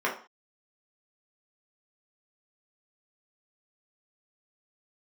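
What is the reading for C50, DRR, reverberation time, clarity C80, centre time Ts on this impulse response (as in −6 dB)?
9.0 dB, −4.5 dB, non-exponential decay, 14.0 dB, 22 ms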